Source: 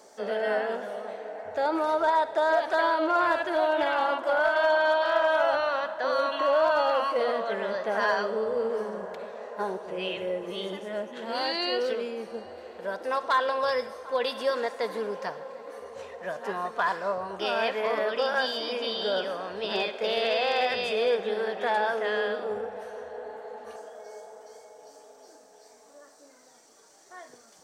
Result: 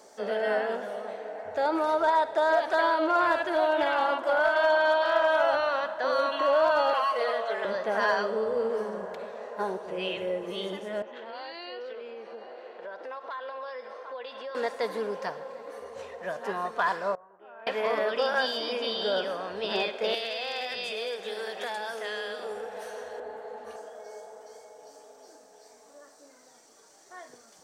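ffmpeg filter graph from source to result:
-filter_complex "[0:a]asettb=1/sr,asplit=3[a][b][c];[a]atrim=end=6.934[d];[b]atrim=start=6.93:end=7.65,asetpts=PTS-STARTPTS,afade=t=in:d=0.004:c=qsin,afade=t=out:st=0.716:d=0.004:c=qsin,highpass=550,aecho=1:1:4.7:0.58,atrim=end_sample=31752[e];[c]atrim=start=7.646[f];[d][e]acrossfade=d=0.004:c1=hsin:c2=qsin[g];[g][f]acrossfade=d=0.004:c1=qsin:c2=hsin,asettb=1/sr,asplit=3[h][i][j];[h]atrim=end=11.024[k];[i]atrim=start=11.02:end=14.55,asetpts=PTS-STARTPTS,afade=t=in:d=0.004:c=qsin,afade=t=out:st=3.526:d=0.004:c=qsin,acompressor=threshold=-36dB:ratio=4:attack=3.2:release=140:knee=1:detection=peak,highpass=380,lowpass=3.4k[l];[j]atrim=start=14.546[m];[k][l]acrossfade=d=0.004:c1=hsin:c2=qsin[n];[n][m]acrossfade=d=0.004:c1=qsin:c2=hsin,asettb=1/sr,asplit=3[o][p][q];[o]atrim=end=17.154[r];[p]atrim=start=17.15:end=17.67,asetpts=PTS-STARTPTS,afade=t=in:d=0.004:c=qsin,afade=t=out:st=0.516:d=0.004:c=qsin,lowpass=f=1.8k:w=0.5412,lowpass=f=1.8k:w=1.3066,agate=range=-18dB:threshold=-24dB:ratio=16:release=100:detection=peak,lowshelf=f=260:g=-12[s];[q]atrim=start=17.666[t];[r][s]acrossfade=d=0.004:c1=hsin:c2=qsin[u];[u][t]acrossfade=d=0.004:c1=qsin:c2=hsin,asettb=1/sr,asplit=3[v][w][x];[v]atrim=end=20.144[y];[w]atrim=start=20.14:end=23.2,asetpts=PTS-STARTPTS,afade=t=in:d=0.004:c=qsin,afade=t=out:st=3.056:d=0.004:c=qsin,highpass=f=98:p=1,highshelf=f=2.6k:g=11.5,acrossover=split=330|5000[z][aa][ab];[z]acompressor=threshold=-51dB:ratio=4[ac];[aa]acompressor=threshold=-34dB:ratio=4[ad];[ab]acompressor=threshold=-48dB:ratio=4[ae];[ac][ad][ae]amix=inputs=3:normalize=0[af];[x]atrim=start=23.196[ag];[y][af]acrossfade=d=0.004:c1=hsin:c2=qsin[ah];[ah][ag]acrossfade=d=0.004:c1=qsin:c2=hsin"

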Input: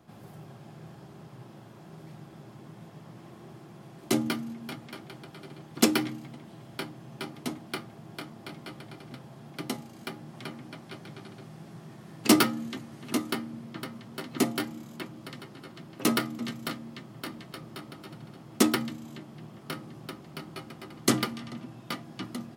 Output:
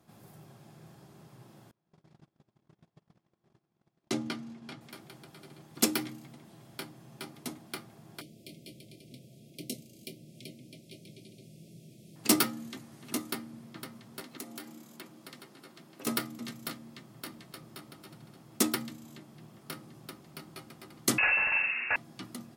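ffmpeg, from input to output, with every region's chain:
-filter_complex "[0:a]asettb=1/sr,asplit=3[a][b][c];[a]atrim=end=1.714[d];[b]atrim=start=1.71:end=4.81,asetpts=PTS-STARTPTS,afade=t=in:d=0.004:c=qsin,afade=t=out:st=3.096:d=0.004:c=qsin,lowpass=5.6k,agate=range=-27dB:threshold=-45dB:ratio=16:release=100:detection=peak[e];[c]atrim=start=4.806[f];[d][e]acrossfade=d=0.004:c1=hsin:c2=qsin[g];[g][f]acrossfade=d=0.004:c1=qsin:c2=hsin,asettb=1/sr,asplit=3[h][i][j];[h]atrim=end=8.214[k];[i]atrim=start=8.21:end=12.16,asetpts=PTS-STARTPTS,afade=t=in:d=0.004:c=qsin,afade=t=out:st=3.946:d=0.004:c=qsin,asuperstop=centerf=1200:order=12:qfactor=0.72,asplit=2[l][m];[m]adelay=24,volume=-12dB[n];[l][n]amix=inputs=2:normalize=0,atrim=end_sample=174195[o];[j]atrim=start=12.156[p];[k][o]acrossfade=d=0.004:c1=hsin:c2=qsin[q];[q][p]acrossfade=d=0.004:c1=qsin:c2=hsin,asettb=1/sr,asplit=3[r][s][t];[r]atrim=end=14.204[u];[s]atrim=start=14.2:end=16.07,asetpts=PTS-STARTPTS,afade=t=in:d=0.004:c=qsin,afade=t=out:st=1.866:d=0.004:c=qsin,highpass=190,acompressor=threshold=-35dB:ratio=4:attack=3.2:release=140:knee=1:detection=peak,aeval=exprs='0.0355*(abs(mod(val(0)/0.0355+3,4)-2)-1)':c=same[v];[t]atrim=start=16.066[w];[u][v]acrossfade=d=0.004:c1=hsin:c2=qsin[x];[x][w]acrossfade=d=0.004:c1=qsin:c2=hsin,asettb=1/sr,asplit=3[y][z][aa];[y]atrim=end=21.184[ab];[z]atrim=start=21.18:end=21.96,asetpts=PTS-STARTPTS,afade=t=in:d=0.004:c=qsin,afade=t=out:st=0.776:d=0.004:c=qsin,asplit=2[ac][ad];[ad]highpass=f=720:p=1,volume=31dB,asoftclip=type=tanh:threshold=-10.5dB[ae];[ac][ae]amix=inputs=2:normalize=0,lowpass=f=1.8k:p=1,volume=-6dB,asplit=2[af][ag];[ag]adelay=47,volume=-3.5dB[ah];[af][ah]amix=inputs=2:normalize=0,atrim=end_sample=34398,lowpass=f=2.5k:t=q:w=0.5098,lowpass=f=2.5k:t=q:w=0.6013,lowpass=f=2.5k:t=q:w=0.9,lowpass=f=2.5k:t=q:w=2.563,afreqshift=-2900[ai];[aa]atrim=start=21.956[aj];[ab][ai]acrossfade=d=0.004:c1=hsin:c2=qsin[ak];[ak][aj]acrossfade=d=0.004:c1=qsin:c2=hsin,aemphasis=mode=production:type=cd,bandreject=f=3k:w=29,volume=-6.5dB"

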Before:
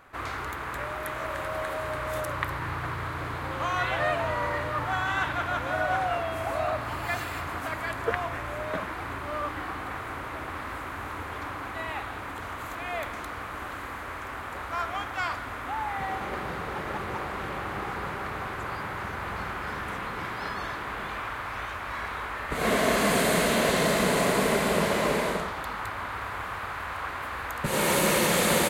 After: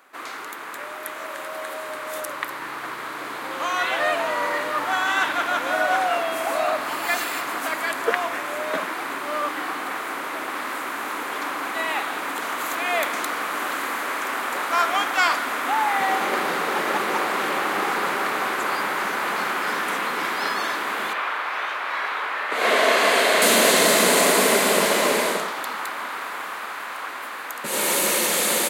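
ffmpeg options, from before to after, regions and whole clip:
-filter_complex "[0:a]asettb=1/sr,asplit=3[a][b][c];[a]atrim=end=21.134[d];[b]atrim=start=21.13:end=23.42,asetpts=PTS-STARTPTS,afade=t=in:d=0.004:c=qsin,afade=t=out:st=2.286:d=0.004:c=qsin,acrossover=split=360 4400:gain=0.178 1 0.2[e][f][g];[e][f][g]amix=inputs=3:normalize=0,asplit=2[h][i];[i]adelay=41,volume=-12.5dB[j];[h][j]amix=inputs=2:normalize=0,atrim=end_sample=100989[k];[c]atrim=start=23.416[l];[d][k]acrossfade=d=0.004:c1=hsin:c2=qsin[m];[m][l]acrossfade=d=0.004:c1=qsin:c2=hsin,highpass=f=230:w=0.5412,highpass=f=230:w=1.3066,highshelf=f=3.3k:g=9,dynaudnorm=f=830:g=9:m=11dB,volume=-1.5dB"

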